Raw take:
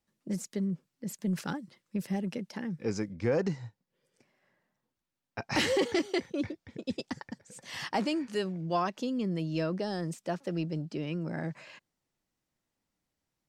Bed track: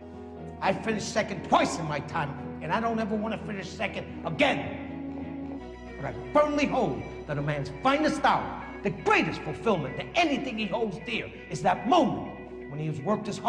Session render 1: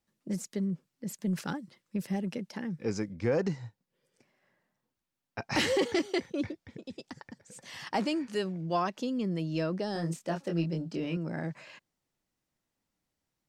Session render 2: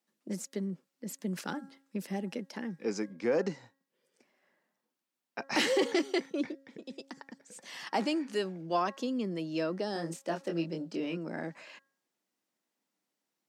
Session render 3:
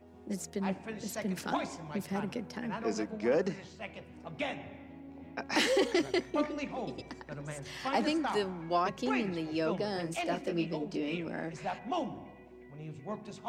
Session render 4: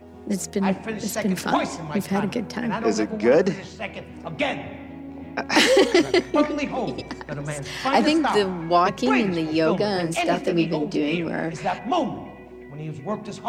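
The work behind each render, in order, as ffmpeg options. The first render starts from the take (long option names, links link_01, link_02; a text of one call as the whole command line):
ffmpeg -i in.wav -filter_complex "[0:a]asettb=1/sr,asplit=3[link_01][link_02][link_03];[link_01]atrim=end=6.774[link_04];[link_02]atrim=start=6.77:end=7.87,asetpts=PTS-STARTPTS,afade=type=in:duration=0.004:curve=qsin,afade=type=out:start_time=1.096:duration=0.004:curve=qsin,acompressor=threshold=-44dB:ratio=2:attack=3.2:release=140:knee=1:detection=peak[link_05];[link_03]atrim=start=7.866[link_06];[link_04][link_05]acrossfade=duration=0.004:curve1=hsin:curve2=qsin[link_07];[link_07][link_06]acrossfade=duration=0.004:curve1=qsin:curve2=hsin,asettb=1/sr,asplit=3[link_08][link_09][link_10];[link_08]atrim=end=9.934[link_11];[link_09]atrim=start=9.93:end=11.17,asetpts=PTS-STARTPTS,afade=type=in:duration=0.004:curve=qsin,afade=type=out:start_time=1.236:duration=0.004:curve=qsin,asplit=2[link_12][link_13];[link_13]adelay=24,volume=-4dB[link_14];[link_12][link_14]amix=inputs=2:normalize=0,atrim=end_sample=54684[link_15];[link_10]atrim=start=11.166[link_16];[link_11][link_15]acrossfade=duration=0.004:curve1=hsin:curve2=qsin[link_17];[link_17][link_16]acrossfade=duration=0.004:curve1=qsin:curve2=hsin" out.wav
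ffmpeg -i in.wav -af "highpass=frequency=210:width=0.5412,highpass=frequency=210:width=1.3066,bandreject=frequency=272.7:width_type=h:width=4,bandreject=frequency=545.4:width_type=h:width=4,bandreject=frequency=818.1:width_type=h:width=4,bandreject=frequency=1090.8:width_type=h:width=4,bandreject=frequency=1363.5:width_type=h:width=4,bandreject=frequency=1636.2:width_type=h:width=4,bandreject=frequency=1908.9:width_type=h:width=4" out.wav
ffmpeg -i in.wav -i bed.wav -filter_complex "[1:a]volume=-12.5dB[link_01];[0:a][link_01]amix=inputs=2:normalize=0" out.wav
ffmpeg -i in.wav -af "volume=11.5dB" out.wav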